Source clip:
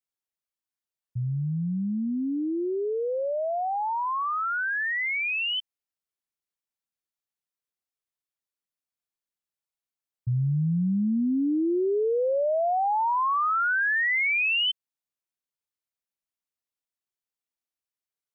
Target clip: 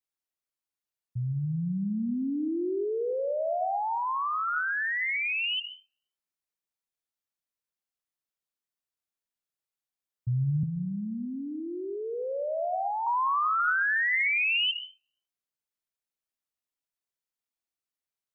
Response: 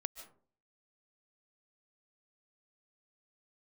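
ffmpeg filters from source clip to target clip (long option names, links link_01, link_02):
-filter_complex "[0:a]asettb=1/sr,asplit=3[link_01][link_02][link_03];[link_01]atrim=end=10.634[link_04];[link_02]atrim=start=10.63:end=13.07,asetpts=PTS-STARTPTS,afade=type=in:duration=0.004:curve=qsin,afade=type=out:start_time=2.436:duration=0.004:curve=qsin,acrossover=split=150|670[link_05][link_06][link_07];[link_05]acompressor=threshold=-34dB:ratio=4[link_08];[link_06]acompressor=threshold=-38dB:ratio=4[link_09];[link_07]acompressor=threshold=-31dB:ratio=4[link_10];[link_08][link_09][link_10]amix=inputs=3:normalize=0[link_11];[link_03]atrim=start=13.066[link_12];[link_04][link_11]acrossfade=duration=0.004:curve1=hsin:curve2=qsin[link_13];[link_13][link_12]acrossfade=duration=0.004:curve1=qsin:curve2=hsin[link_14];[1:a]atrim=start_sample=2205[link_15];[link_14][link_15]afir=irnorm=-1:irlink=0"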